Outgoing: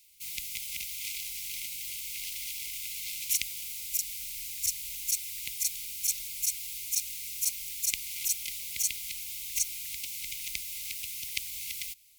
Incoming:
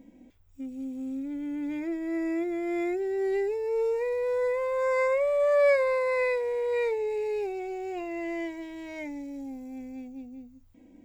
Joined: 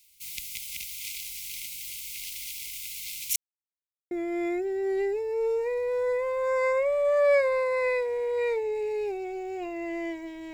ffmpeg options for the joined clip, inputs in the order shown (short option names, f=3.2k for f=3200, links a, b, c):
-filter_complex "[0:a]apad=whole_dur=10.53,atrim=end=10.53,asplit=2[a][b];[a]atrim=end=3.36,asetpts=PTS-STARTPTS,afade=t=out:st=3.356:d=0.004:c=hsin[c];[b]atrim=start=3.36:end=4.11,asetpts=PTS-STARTPTS,volume=0[d];[1:a]atrim=start=2.46:end=8.88,asetpts=PTS-STARTPTS,afade=t=in:d=0.004:c=hsin[e];[c][d][e]concat=n=3:v=0:a=1"